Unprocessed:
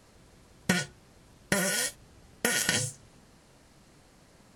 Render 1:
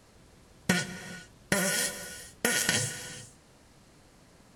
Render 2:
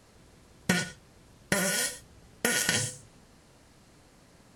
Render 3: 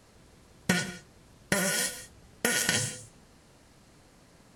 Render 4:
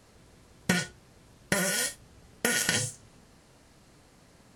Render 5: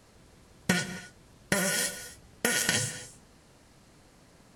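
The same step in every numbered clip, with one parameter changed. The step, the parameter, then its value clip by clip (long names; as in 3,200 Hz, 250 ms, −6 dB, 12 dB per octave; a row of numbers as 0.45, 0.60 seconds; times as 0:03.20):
reverb whose tail is shaped and stops, gate: 470, 140, 210, 80, 300 milliseconds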